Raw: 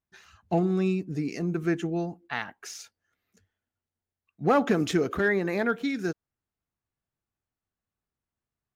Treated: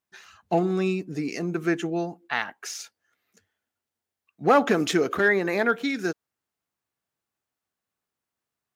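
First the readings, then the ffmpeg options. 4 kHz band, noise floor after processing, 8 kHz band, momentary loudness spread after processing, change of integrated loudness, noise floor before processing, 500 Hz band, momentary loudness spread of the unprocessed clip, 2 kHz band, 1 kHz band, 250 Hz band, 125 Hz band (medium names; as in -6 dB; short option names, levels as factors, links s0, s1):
+5.5 dB, under -85 dBFS, +5.5 dB, 13 LU, +2.5 dB, under -85 dBFS, +3.0 dB, 12 LU, +5.5 dB, +5.0 dB, +0.5 dB, -2.0 dB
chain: -af "highpass=f=370:p=1,volume=1.88"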